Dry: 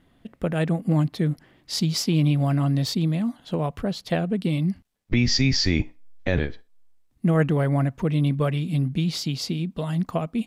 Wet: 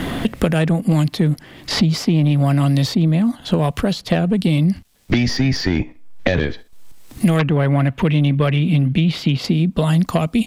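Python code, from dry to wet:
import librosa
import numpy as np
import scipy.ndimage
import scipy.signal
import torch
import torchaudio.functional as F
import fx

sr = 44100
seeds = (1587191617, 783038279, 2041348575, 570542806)

p1 = fx.high_shelf_res(x, sr, hz=4100.0, db=-10.5, q=1.5, at=(7.39, 9.45))
p2 = fx.level_steps(p1, sr, step_db=17)
p3 = p1 + (p2 * 10.0 ** (0.5 / 20.0))
p4 = fx.fold_sine(p3, sr, drive_db=7, ceiling_db=-3.0)
p5 = fx.band_squash(p4, sr, depth_pct=100)
y = p5 * 10.0 ** (-6.0 / 20.0)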